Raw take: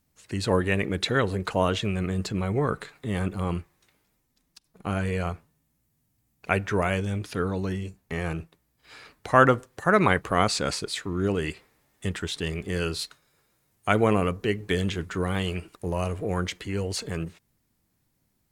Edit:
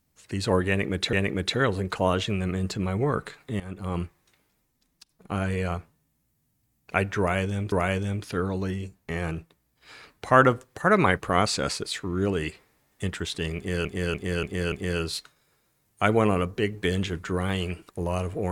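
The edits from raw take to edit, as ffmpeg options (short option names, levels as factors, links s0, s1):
-filter_complex "[0:a]asplit=8[s0][s1][s2][s3][s4][s5][s6][s7];[s0]atrim=end=1.132[s8];[s1]atrim=start=0.678:end=3.15,asetpts=PTS-STARTPTS,afade=t=out:st=2.468:d=0.004:c=hsin:silence=0.125893[s9];[s2]atrim=start=3.15:end=7.272,asetpts=PTS-STARTPTS,afade=t=in:d=0.4:silence=0.125893[s10];[s3]atrim=start=6.738:end=12.872[s11];[s4]atrim=start=12.578:end=12.872[s12];[s5]atrim=start=12.578:end=12.872[s13];[s6]atrim=start=12.578:end=12.872[s14];[s7]atrim=start=12.578[s15];[s9][s10]concat=n=2:v=0:a=1[s16];[s8][s16]acrossfade=d=0.004:c1=hsin:c2=hsin[s17];[s17][s11]acrossfade=d=0.004:c1=hsin:c2=hsin[s18];[s18][s12]acrossfade=d=0.004:c1=hsin:c2=hsin[s19];[s19][s13]acrossfade=d=0.004:c1=hsin:c2=hsin[s20];[s20][s14]acrossfade=d=0.004:c1=hsin:c2=hsin[s21];[s21][s15]acrossfade=d=0.004:c1=hsin:c2=hsin"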